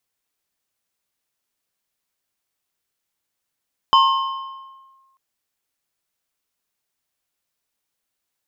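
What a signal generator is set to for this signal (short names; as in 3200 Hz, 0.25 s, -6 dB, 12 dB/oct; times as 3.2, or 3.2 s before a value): FM tone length 1.24 s, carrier 1070 Hz, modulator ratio 1.86, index 0.81, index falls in 1.09 s linear, decay 1.42 s, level -8 dB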